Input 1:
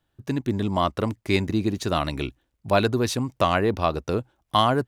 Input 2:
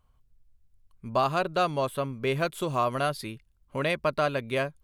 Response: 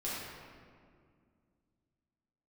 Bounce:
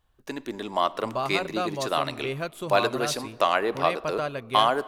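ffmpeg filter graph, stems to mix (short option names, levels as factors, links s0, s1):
-filter_complex "[0:a]highpass=450,volume=0.944,asplit=2[s0][s1];[s1]volume=0.1[s2];[1:a]volume=0.631[s3];[2:a]atrim=start_sample=2205[s4];[s2][s4]afir=irnorm=-1:irlink=0[s5];[s0][s3][s5]amix=inputs=3:normalize=0"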